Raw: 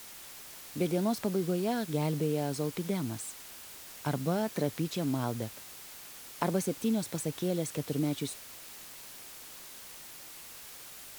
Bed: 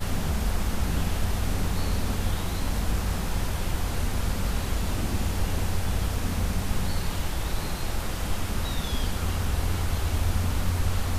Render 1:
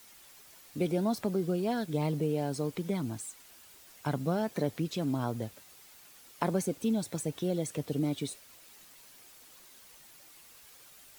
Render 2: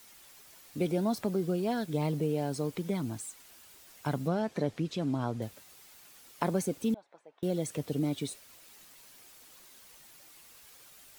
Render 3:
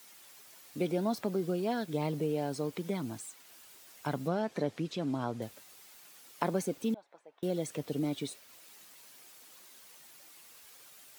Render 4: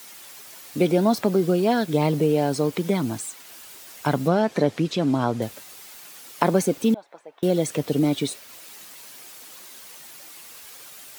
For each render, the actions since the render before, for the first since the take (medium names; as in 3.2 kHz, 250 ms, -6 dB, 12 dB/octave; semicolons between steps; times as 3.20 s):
noise reduction 9 dB, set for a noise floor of -48 dBFS
4.28–5.42 s: distance through air 55 m; 6.94–7.43 s: ladder band-pass 1 kHz, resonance 25%
high-pass 200 Hz 6 dB/octave; dynamic bell 10 kHz, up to -4 dB, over -54 dBFS, Q 0.72
trim +12 dB; peak limiter -3 dBFS, peak gain reduction 1 dB